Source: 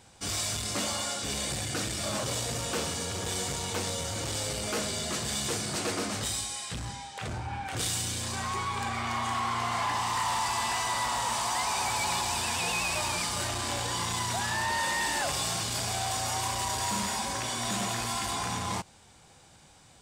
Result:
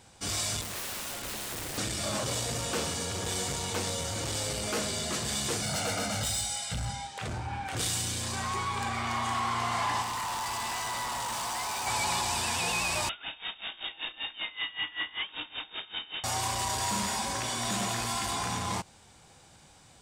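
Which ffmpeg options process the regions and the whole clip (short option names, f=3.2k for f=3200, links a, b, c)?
-filter_complex "[0:a]asettb=1/sr,asplit=3[a][b][c];[a]atrim=end=0.614[d];[b]atrim=start=0.61:end=1.78,asetpts=PTS-STARTPTS,afade=t=in:d=0.004:c=qsin,afade=t=out:st=1.166:d=0.004:c=qsin,lowpass=10k,equalizer=f=5.2k:t=o:w=0.97:g=-12.5,aeval=exprs='(mod(39.8*val(0)+1,2)-1)/39.8':c=same[e];[c]atrim=start=1.776[f];[d][e]acrossfade=d=0.004:c1=hsin:c2=qsin[g];[g][f]acrossfade=d=0.004:c1=qsin:c2=hsin,asettb=1/sr,asplit=3[h][i][j];[h]atrim=end=5.624[k];[i]atrim=start=5.62:end=7.07,asetpts=PTS-STARTPTS,afade=t=in:d=0.004:c=qsin,afade=t=out:st=1.446:d=0.004:c=qsin,aecho=1:1:1.4:0.75,atrim=end_sample=63945,asoftclip=type=hard:threshold=-26.5dB[l];[j]atrim=start=7.066[m];[k][l]acrossfade=d=0.004:c1=hsin:c2=qsin[n];[n][m]acrossfade=d=0.004:c1=qsin:c2=hsin,asettb=1/sr,asplit=3[o][p][q];[o]atrim=end=10.024[r];[p]atrim=start=10.02:end=11.87,asetpts=PTS-STARTPTS,afade=t=in:d=0.004:c=qsin,afade=t=out:st=1.846:d=0.004:c=qsin,volume=31.5dB,asoftclip=hard,volume=-31.5dB,aeval=exprs='val(0)+0.00224*sin(2*PI*1500*n/s)':c=same[s];[q]atrim=start=11.866[t];[r][s]acrossfade=d=0.004:c1=hsin:c2=qsin[u];[u][t]acrossfade=d=0.004:c1=qsin:c2=hsin,asettb=1/sr,asplit=3[v][w][x];[v]atrim=end=13.094[y];[w]atrim=start=13.09:end=16.24,asetpts=PTS-STARTPTS,afade=t=in:d=0.004:c=qsin,afade=t=out:st=3.146:d=0.004:c=qsin,lowpass=f=3.2k:t=q:w=0.5098,lowpass=f=3.2k:t=q:w=0.6013,lowpass=f=3.2k:t=q:w=0.9,lowpass=f=3.2k:t=q:w=2.563,afreqshift=-3800,aeval=exprs='val(0)*pow(10,-20*(0.5-0.5*cos(2*PI*5.2*n/s))/20)':c=same[z];[x]atrim=start=16.236[aa];[y][z]acrossfade=d=0.004:c1=hsin:c2=qsin[ab];[ab][aa]acrossfade=d=0.004:c1=qsin:c2=hsin"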